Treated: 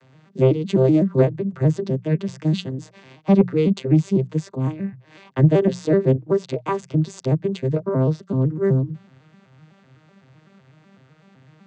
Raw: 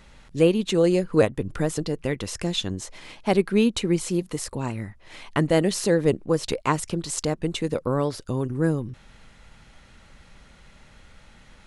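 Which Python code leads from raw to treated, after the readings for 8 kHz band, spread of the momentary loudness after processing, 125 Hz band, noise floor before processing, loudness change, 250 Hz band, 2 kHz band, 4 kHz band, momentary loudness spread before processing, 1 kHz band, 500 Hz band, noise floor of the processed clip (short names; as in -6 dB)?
under -10 dB, 10 LU, +8.5 dB, -52 dBFS, +4.0 dB, +4.0 dB, -5.5 dB, -8.0 dB, 11 LU, -1.5 dB, +2.5 dB, -55 dBFS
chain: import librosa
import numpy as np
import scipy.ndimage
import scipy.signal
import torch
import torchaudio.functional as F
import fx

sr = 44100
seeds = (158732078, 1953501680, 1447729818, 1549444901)

y = fx.vocoder_arp(x, sr, chord='minor triad', root=48, every_ms=126)
y = 10.0 ** (-9.5 / 20.0) * np.tanh(y / 10.0 ** (-9.5 / 20.0))
y = fx.hum_notches(y, sr, base_hz=60, count=3)
y = F.gain(torch.from_numpy(y), 6.0).numpy()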